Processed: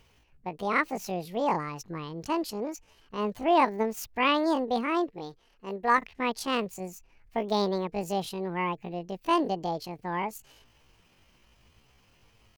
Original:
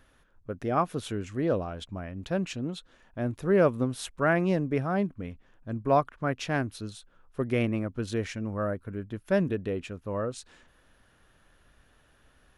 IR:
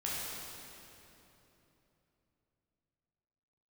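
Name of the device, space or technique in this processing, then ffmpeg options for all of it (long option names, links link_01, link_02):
chipmunk voice: -filter_complex "[0:a]asetrate=76340,aresample=44100,atempo=0.577676,asettb=1/sr,asplit=3[link_01][link_02][link_03];[link_01]atrim=end=5.124[link_04];[link_02]atrim=start=5.12:end=5.98,asetpts=PTS-STARTPTS,afade=type=in:duration=0.004:curve=qsin,afade=type=out:start_time=0.856:duration=0.004:curve=qsin,bass=frequency=250:gain=-8,treble=frequency=4000:gain=1[link_05];[link_03]atrim=start=5.976[link_06];[link_04][link_05]acrossfade=duration=0.004:curve1=hsin:curve2=qsin[link_07];[link_07][link_06]acrossfade=duration=0.004:curve1=qsin:curve2=hsin"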